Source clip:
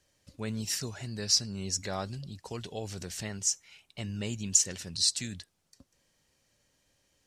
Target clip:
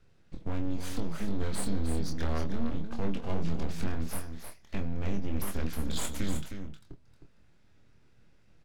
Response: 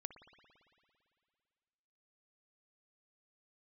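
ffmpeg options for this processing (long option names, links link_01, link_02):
-filter_complex "[0:a]bass=frequency=250:gain=13,treble=frequency=4000:gain=-13,acompressor=threshold=-30dB:ratio=6,flanger=delay=6.7:depth=3.1:regen=88:speed=0.51:shape=triangular,aeval=exprs='abs(val(0))':channel_layout=same,asetrate=37044,aresample=44100,asplit=2[link_01][link_02];[link_02]adelay=25,volume=-6dB[link_03];[link_01][link_03]amix=inputs=2:normalize=0,aecho=1:1:312:0.398,volume=7.5dB"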